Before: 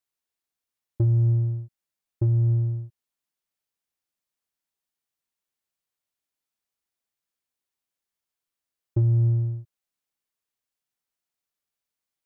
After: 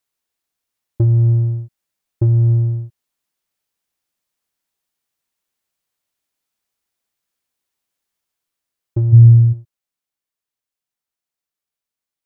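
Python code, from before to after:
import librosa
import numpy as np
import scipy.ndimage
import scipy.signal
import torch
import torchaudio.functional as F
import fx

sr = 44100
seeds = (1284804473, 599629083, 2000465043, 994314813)

y = fx.peak_eq(x, sr, hz=110.0, db=12.5, octaves=0.56, at=(9.12, 9.52), fade=0.02)
y = fx.rider(y, sr, range_db=4, speed_s=2.0)
y = F.gain(torch.from_numpy(y), 4.0).numpy()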